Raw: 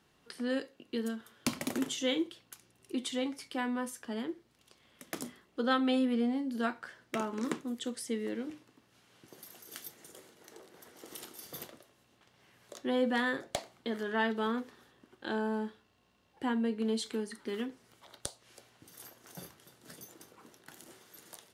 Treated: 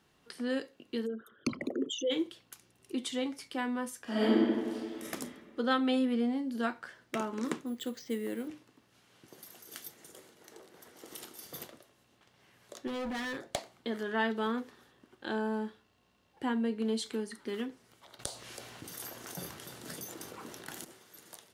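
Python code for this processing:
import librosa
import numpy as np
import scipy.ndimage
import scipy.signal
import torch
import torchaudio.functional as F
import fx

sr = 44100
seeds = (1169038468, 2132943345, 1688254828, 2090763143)

y = fx.envelope_sharpen(x, sr, power=3.0, at=(1.05, 2.1), fade=0.02)
y = fx.reverb_throw(y, sr, start_s=4.03, length_s=1.0, rt60_s=2.0, drr_db=-11.5)
y = fx.resample_bad(y, sr, factor=4, down='filtered', up='hold', at=(7.66, 8.48))
y = fx.clip_hard(y, sr, threshold_db=-34.5, at=(12.87, 13.41))
y = fx.env_flatten(y, sr, amount_pct=50, at=(18.19, 20.85))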